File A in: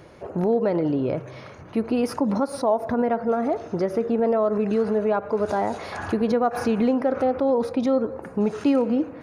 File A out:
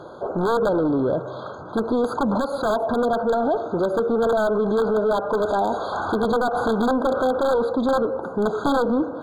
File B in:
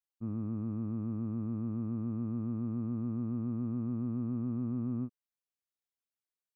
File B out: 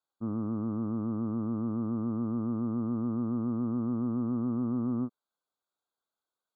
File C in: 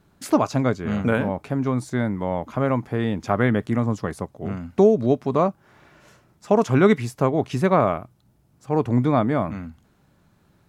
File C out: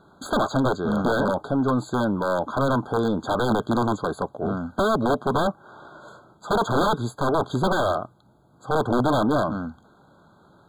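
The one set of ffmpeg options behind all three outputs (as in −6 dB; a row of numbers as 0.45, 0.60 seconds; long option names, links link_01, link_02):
-filter_complex "[0:a]aeval=exprs='(mod(4.73*val(0)+1,2)-1)/4.73':channel_layout=same,asplit=2[link_01][link_02];[link_02]highpass=frequency=720:poles=1,volume=20dB,asoftclip=type=tanh:threshold=-13dB[link_03];[link_01][link_03]amix=inputs=2:normalize=0,lowpass=frequency=1400:poles=1,volume=-6dB,afftfilt=real='re*eq(mod(floor(b*sr/1024/1600),2),0)':imag='im*eq(mod(floor(b*sr/1024/1600),2),0)':win_size=1024:overlap=0.75"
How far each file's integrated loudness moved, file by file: +1.5, +4.0, −1.5 LU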